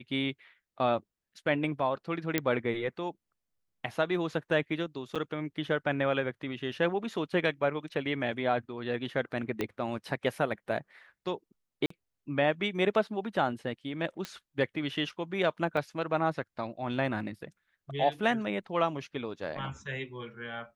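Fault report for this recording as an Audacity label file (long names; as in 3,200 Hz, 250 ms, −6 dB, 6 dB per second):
2.380000	2.380000	click −11 dBFS
5.150000	5.160000	drop-out 6.5 ms
9.610000	9.610000	click −17 dBFS
11.860000	11.900000	drop-out 44 ms
14.250000	14.250000	click −20 dBFS
15.770000	15.770000	drop-out 3.6 ms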